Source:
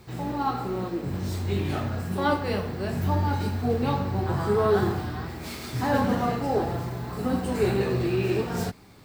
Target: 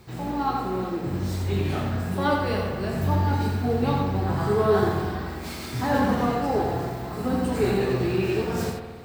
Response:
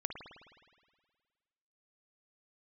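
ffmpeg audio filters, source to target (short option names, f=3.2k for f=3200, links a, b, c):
-filter_complex "[0:a]asplit=2[a][b];[1:a]atrim=start_sample=2205,adelay=86[c];[b][c]afir=irnorm=-1:irlink=0,volume=-4dB[d];[a][d]amix=inputs=2:normalize=0"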